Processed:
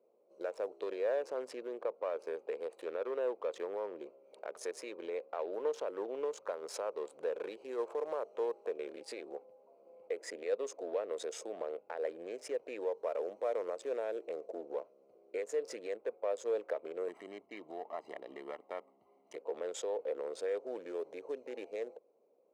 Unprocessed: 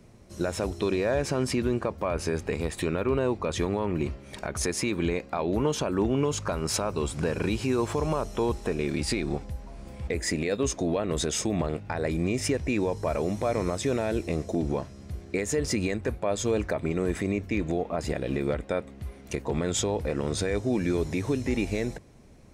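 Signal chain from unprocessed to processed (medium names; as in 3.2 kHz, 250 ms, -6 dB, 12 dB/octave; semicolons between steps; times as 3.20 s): local Wiener filter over 25 samples; ladder high-pass 440 Hz, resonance 65%; dynamic bell 1.5 kHz, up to +5 dB, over -48 dBFS, Q 0.76; 17.08–19.36 s: comb 1 ms, depth 82%; trim -4.5 dB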